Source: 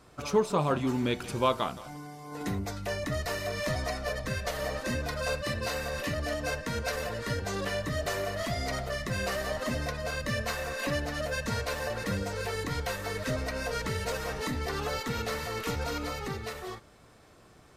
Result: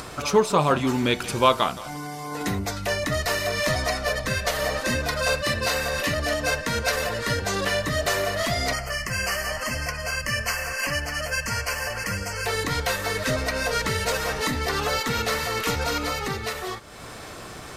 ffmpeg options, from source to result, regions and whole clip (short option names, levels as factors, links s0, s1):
-filter_complex "[0:a]asettb=1/sr,asplit=3[s0][s1][s2];[s0]atrim=end=8.734[s3];[s1]atrim=start=8.73:end=12.46,asetpts=PTS-STARTPTS,afade=t=in:d=0.004:c=qsin,afade=t=out:st=3.726:d=0.004:c=qsin,asuperstop=centerf=3700:order=8:qfactor=3,equalizer=f=350:t=o:w=2.4:g=-9.5[s4];[s2]atrim=start=12.456[s5];[s3][s4]acrossfade=d=0.004:c1=hsin:c2=qsin[s6];[s6][s5]acrossfade=d=0.004:c1=qsin:c2=hsin,tiltshelf=f=730:g=-3,acompressor=mode=upward:threshold=0.0178:ratio=2.5,volume=2.37"